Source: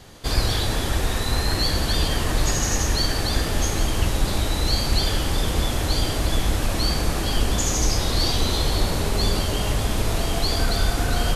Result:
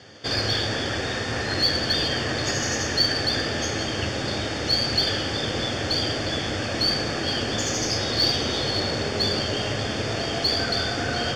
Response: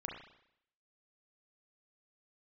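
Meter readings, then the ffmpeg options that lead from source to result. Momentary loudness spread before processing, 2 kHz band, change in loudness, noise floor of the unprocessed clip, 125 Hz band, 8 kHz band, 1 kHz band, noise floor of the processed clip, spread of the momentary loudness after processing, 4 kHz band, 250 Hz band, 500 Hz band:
3 LU, +3.0 dB, −0.5 dB, −25 dBFS, −6.0 dB, −4.5 dB, −2.0 dB, −28 dBFS, 6 LU, +2.5 dB, −1.0 dB, +1.0 dB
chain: -af "asuperstop=centerf=4000:order=8:qfactor=6.8,highpass=frequency=100:width=0.5412,highpass=frequency=100:width=1.3066,equalizer=frequency=170:width_type=q:width=4:gain=-7,equalizer=frequency=530:width_type=q:width=4:gain=3,equalizer=frequency=990:width_type=q:width=4:gain=-7,equalizer=frequency=1700:width_type=q:width=4:gain=5,equalizer=frequency=4200:width_type=q:width=4:gain=8,lowpass=frequency=6100:width=0.5412,lowpass=frequency=6100:width=1.3066,aeval=exprs='0.355*(cos(1*acos(clip(val(0)/0.355,-1,1)))-cos(1*PI/2))+0.00631*(cos(8*acos(clip(val(0)/0.355,-1,1)))-cos(8*PI/2))':channel_layout=same"

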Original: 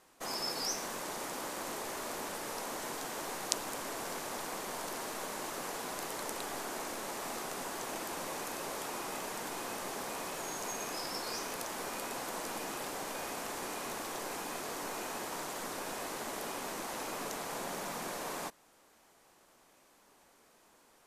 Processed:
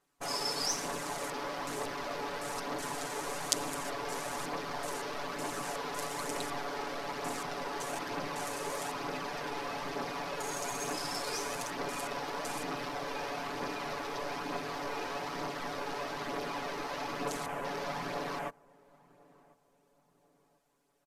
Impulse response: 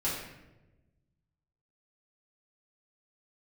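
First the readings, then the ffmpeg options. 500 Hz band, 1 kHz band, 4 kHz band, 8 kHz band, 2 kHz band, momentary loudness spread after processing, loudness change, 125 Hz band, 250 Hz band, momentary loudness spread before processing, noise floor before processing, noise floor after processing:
+3.0 dB, +3.0 dB, +2.0 dB, −1.0 dB, +2.5 dB, 4 LU, +2.0 dB, +6.0 dB, +3.0 dB, 3 LU, −65 dBFS, −71 dBFS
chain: -filter_complex "[0:a]aecho=1:1:7:0.92,afwtdn=0.00501,equalizer=frequency=90:width_type=o:width=2.2:gain=2,aphaser=in_gain=1:out_gain=1:delay=2.5:decay=0.3:speed=1.1:type=triangular,asplit=2[link_01][link_02];[link_02]adelay=1044,lowpass=frequency=880:poles=1,volume=-23dB,asplit=2[link_03][link_04];[link_04]adelay=1044,lowpass=frequency=880:poles=1,volume=0.45,asplit=2[link_05][link_06];[link_06]adelay=1044,lowpass=frequency=880:poles=1,volume=0.45[link_07];[link_03][link_05][link_07]amix=inputs=3:normalize=0[link_08];[link_01][link_08]amix=inputs=2:normalize=0"

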